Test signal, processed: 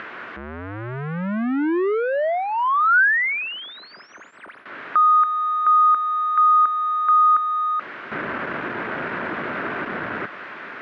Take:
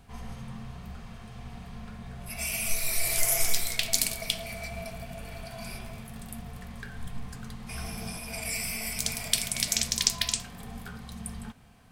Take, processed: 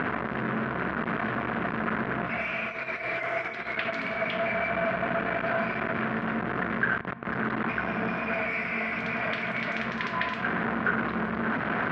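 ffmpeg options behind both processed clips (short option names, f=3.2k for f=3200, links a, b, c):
-af "aeval=exprs='val(0)+0.5*0.0708*sgn(val(0))':c=same,acompressor=mode=upward:threshold=-26dB:ratio=2.5,highpass=270,equalizer=f=500:t=q:w=4:g=-4,equalizer=f=810:t=q:w=4:g=-7,equalizer=f=1.5k:t=q:w=4:g=5,lowpass=f=2k:w=0.5412,lowpass=f=2k:w=1.3066,volume=4.5dB"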